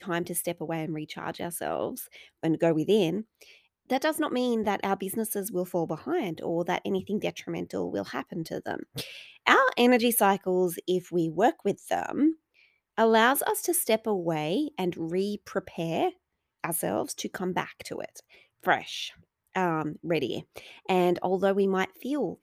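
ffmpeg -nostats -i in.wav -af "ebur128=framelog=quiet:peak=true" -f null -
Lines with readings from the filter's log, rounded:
Integrated loudness:
  I:         -28.0 LUFS
  Threshold: -38.3 LUFS
Loudness range:
  LRA:         6.8 LU
  Threshold: -48.2 LUFS
  LRA low:   -31.8 LUFS
  LRA high:  -25.0 LUFS
True peak:
  Peak:       -4.3 dBFS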